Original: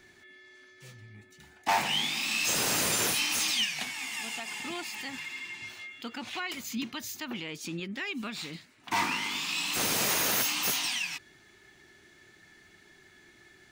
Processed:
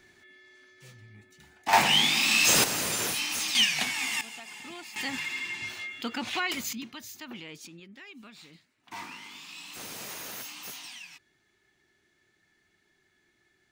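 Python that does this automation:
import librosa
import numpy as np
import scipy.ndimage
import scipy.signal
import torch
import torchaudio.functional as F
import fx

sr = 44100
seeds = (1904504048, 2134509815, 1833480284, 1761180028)

y = fx.gain(x, sr, db=fx.steps((0.0, -1.5), (1.73, 7.0), (2.64, -2.0), (3.55, 6.0), (4.21, -6.0), (4.96, 5.5), (6.73, -5.0), (7.67, -12.5)))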